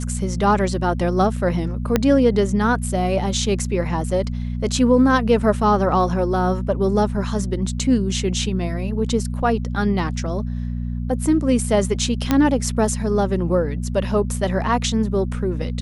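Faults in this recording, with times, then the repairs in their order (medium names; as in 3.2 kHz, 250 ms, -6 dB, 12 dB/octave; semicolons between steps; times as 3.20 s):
hum 60 Hz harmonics 4 -25 dBFS
1.96 s: pop -3 dBFS
12.31 s: pop -4 dBFS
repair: de-click; de-hum 60 Hz, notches 4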